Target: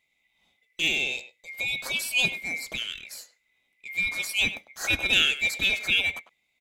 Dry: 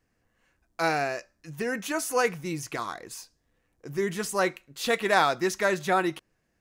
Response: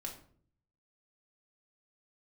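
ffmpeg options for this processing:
-filter_complex "[0:a]afftfilt=real='real(if(lt(b,920),b+92*(1-2*mod(floor(b/92),2)),b),0)':imag='imag(if(lt(b,920),b+92*(1-2*mod(floor(b/92),2)),b),0)':win_size=2048:overlap=0.75,asplit=2[link_01][link_02];[link_02]adelay=100,highpass=300,lowpass=3400,asoftclip=type=hard:threshold=-18dB,volume=-12dB[link_03];[link_01][link_03]amix=inputs=2:normalize=0"

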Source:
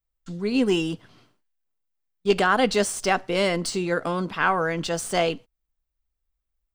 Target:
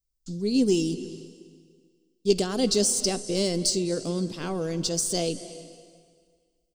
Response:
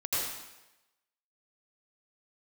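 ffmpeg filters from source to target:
-filter_complex "[0:a]firequalizer=gain_entry='entry(370,0);entry(860,-16);entry(1500,-20);entry(4900,8);entry(14000,1)':delay=0.05:min_phase=1,asplit=2[link_01][link_02];[1:a]atrim=start_sample=2205,asetrate=23373,aresample=44100,adelay=53[link_03];[link_02][link_03]afir=irnorm=-1:irlink=0,volume=-26.5dB[link_04];[link_01][link_04]amix=inputs=2:normalize=0"

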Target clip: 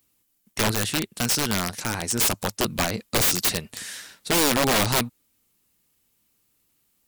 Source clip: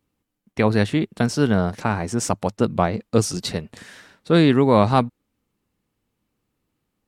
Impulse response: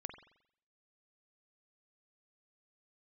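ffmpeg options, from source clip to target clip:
-filter_complex "[0:a]asettb=1/sr,asplit=3[link_01][link_02][link_03];[link_01]atrim=end=0.714[link_04];[link_02]atrim=start=0.71:end=2.19,asetpts=PTS-STARTPTS,afade=type=in:duration=0.004:curve=qsin,afade=type=out:start_time=1.476:duration=0.004:curve=qsin,aeval=exprs='0.596*(cos(1*acos(clip(val(0)/0.596,-1,1)))-cos(1*PI/2))+0.0668*(cos(3*acos(clip(val(0)/0.596,-1,1)))-cos(3*PI/2))+0.133*(cos(4*acos(clip(val(0)/0.596,-1,1)))-cos(4*PI/2))+0.00473*(cos(5*acos(clip(val(0)/0.596,-1,1)))-cos(5*PI/2))+0.0531*(cos(6*acos(clip(val(0)/0.596,-1,1)))-cos(6*PI/2))':channel_layout=same[link_05];[link_03]atrim=start=2.186[link_06];[link_04][link_05]acrossfade=duration=0.004:curve1=hsin:curve2=qsin[link_07];[link_07][link_06]acrossfade=duration=0.004:curve1=qsin:curve2=hsin,crystalizer=i=7.5:c=0,aeval=exprs='(mod(3.35*val(0)+1,2)-1)/3.35':channel_layout=same,volume=-4dB"

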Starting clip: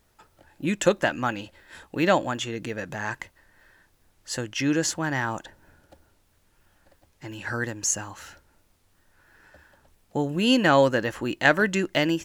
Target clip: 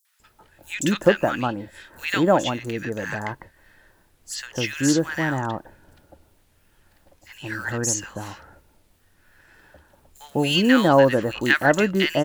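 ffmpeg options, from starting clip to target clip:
ffmpeg -i in.wav -filter_complex "[0:a]acrusher=bits=8:mode=log:mix=0:aa=0.000001,acrossover=split=1300|6000[link_01][link_02][link_03];[link_02]adelay=50[link_04];[link_01]adelay=200[link_05];[link_05][link_04][link_03]amix=inputs=3:normalize=0,volume=4dB" out.wav

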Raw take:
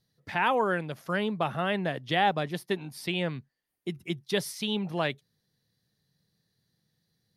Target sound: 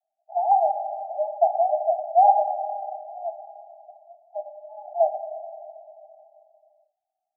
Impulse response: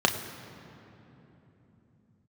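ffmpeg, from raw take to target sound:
-filter_complex "[0:a]asuperpass=centerf=710:order=20:qfactor=3,asettb=1/sr,asplit=3[link_01][link_02][link_03];[link_01]atrim=end=0.514[link_04];[link_02]atrim=start=0.51:end=1.35,asetpts=PTS-STARTPTS,afade=type=in:duration=0.004:curve=qsin,afade=type=out:start_time=0.836:duration=0.004:curve=qsin,aecho=1:1:4.9:0.89,atrim=end_sample=37044[link_05];[link_03]atrim=start=1.346[link_06];[link_04][link_05]acrossfade=duration=0.004:curve1=hsin:curve2=qsin[link_07];[link_07][link_06]acrossfade=duration=0.004:curve1=qsin:curve2=hsin[link_08];[1:a]atrim=start_sample=2205,asetrate=52920,aresample=44100[link_09];[link_08][link_09]afir=irnorm=-1:irlink=0"

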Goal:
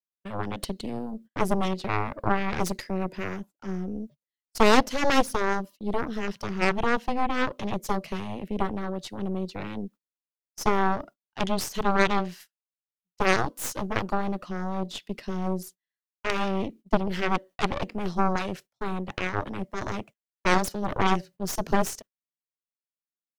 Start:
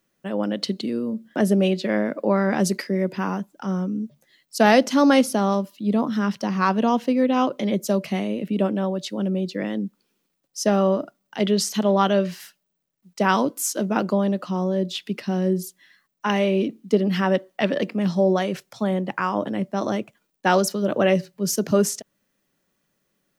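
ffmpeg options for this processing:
ffmpeg -i in.wav -af "aeval=exprs='0.668*(cos(1*acos(clip(val(0)/0.668,-1,1)))-cos(1*PI/2))+0.211*(cos(3*acos(clip(val(0)/0.668,-1,1)))-cos(3*PI/2))+0.15*(cos(4*acos(clip(val(0)/0.668,-1,1)))-cos(4*PI/2))+0.0596*(cos(7*acos(clip(val(0)/0.668,-1,1)))-cos(7*PI/2))+0.0188*(cos(8*acos(clip(val(0)/0.668,-1,1)))-cos(8*PI/2))':channel_layout=same,agate=range=-33dB:threshold=-42dB:ratio=16:detection=peak,volume=-2dB" out.wav

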